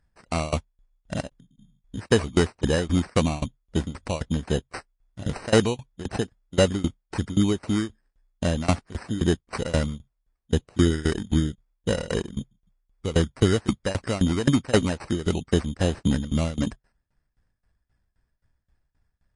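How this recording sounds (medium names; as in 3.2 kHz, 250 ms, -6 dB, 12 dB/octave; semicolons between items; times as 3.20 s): tremolo saw down 3.8 Hz, depth 95%; aliases and images of a low sample rate 3.4 kHz, jitter 0%; MP3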